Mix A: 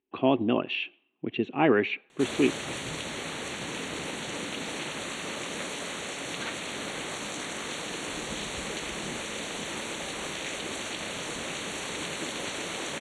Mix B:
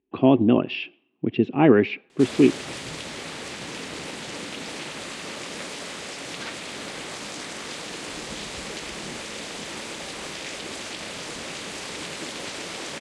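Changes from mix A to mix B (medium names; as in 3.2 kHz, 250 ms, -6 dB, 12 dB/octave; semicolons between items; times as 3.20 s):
speech: add bass shelf 450 Hz +11.5 dB; master: remove Butterworth band-stop 5 kHz, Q 3.9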